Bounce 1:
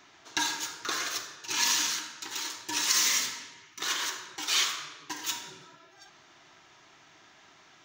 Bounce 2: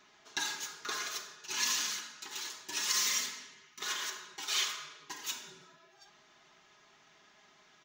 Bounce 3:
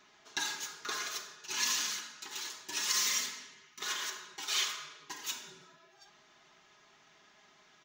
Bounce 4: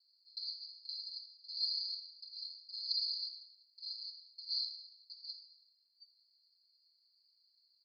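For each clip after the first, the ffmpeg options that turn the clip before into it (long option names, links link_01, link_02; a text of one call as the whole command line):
ffmpeg -i in.wav -af "aecho=1:1:4.8:0.6,volume=-7dB" out.wav
ffmpeg -i in.wav -af anull out.wav
ffmpeg -i in.wav -af "asuperpass=centerf=4500:order=20:qfactor=5.2,volume=4dB" out.wav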